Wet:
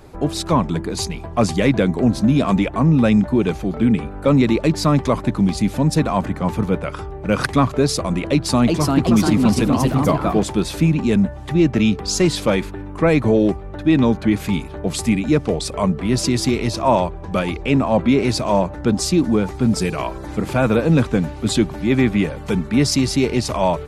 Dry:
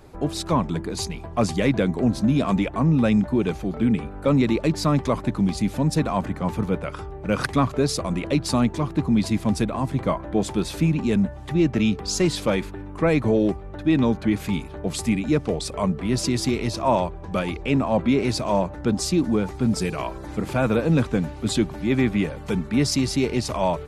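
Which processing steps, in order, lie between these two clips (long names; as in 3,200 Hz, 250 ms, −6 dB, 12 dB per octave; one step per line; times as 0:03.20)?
0:08.29–0:10.44: delay with pitch and tempo change per echo 373 ms, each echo +2 semitones, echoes 2
level +4.5 dB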